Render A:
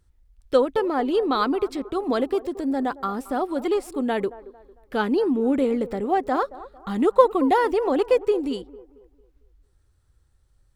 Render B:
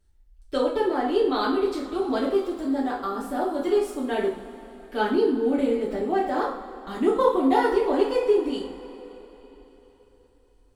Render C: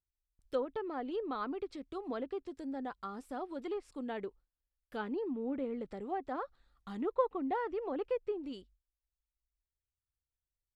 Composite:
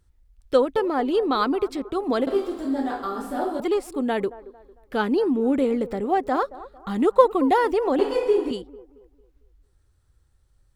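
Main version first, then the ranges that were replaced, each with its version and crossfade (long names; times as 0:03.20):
A
0:02.27–0:03.60: punch in from B
0:07.99–0:08.51: punch in from B
not used: C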